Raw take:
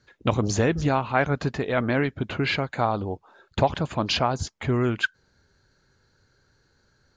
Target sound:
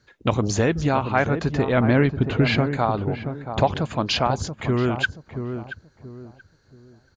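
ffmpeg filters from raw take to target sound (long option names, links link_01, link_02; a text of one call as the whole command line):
ffmpeg -i in.wav -filter_complex "[0:a]asettb=1/sr,asplit=3[link_01][link_02][link_03];[link_01]atrim=end=1.564[link_04];[link_02]atrim=start=1.56:end=2.68,asetpts=PTS-STARTPTS,afade=type=in:duration=0.004:curve=qsin,afade=type=out:start_time=1.116:duration=0.004:curve=qsin,lowshelf=frequency=300:gain=8.5[link_05];[link_03]atrim=start=2.676[link_06];[link_04][link_05]acrossfade=duration=0.004:curve1=hsin:curve2=qsin[link_07];[link_07][link_06]acrossfade=duration=0.004:curve1=qsin:curve2=hsin,asplit=2[link_08][link_09];[link_09]adelay=679,lowpass=frequency=940:poles=1,volume=-7.5dB,asplit=2[link_10][link_11];[link_11]adelay=679,lowpass=frequency=940:poles=1,volume=0.33,asplit=2[link_12][link_13];[link_13]adelay=679,lowpass=frequency=940:poles=1,volume=0.33,asplit=2[link_14][link_15];[link_15]adelay=679,lowpass=frequency=940:poles=1,volume=0.33[link_16];[link_08][link_10][link_12][link_14][link_16]amix=inputs=5:normalize=0,volume=1.5dB" out.wav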